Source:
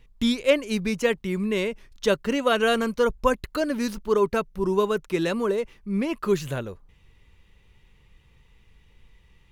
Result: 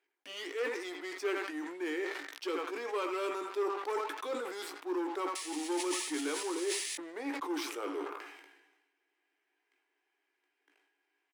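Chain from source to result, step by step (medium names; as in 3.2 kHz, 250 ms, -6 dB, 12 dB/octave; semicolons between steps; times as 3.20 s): on a send: band-passed feedback delay 70 ms, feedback 51%, band-pass 1.5 kHz, level -11.5 dB; on the sum: tape speed -16%; painted sound noise, 5.35–6.96 s, 1.7–11 kHz -34 dBFS; waveshaping leveller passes 3; reverse; compression 6:1, threshold -24 dBFS, peak gain reduction 13.5 dB; reverse; rippled Chebyshev high-pass 280 Hz, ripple 3 dB; doubling 17 ms -9 dB; decay stretcher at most 49 dB/s; trim -8.5 dB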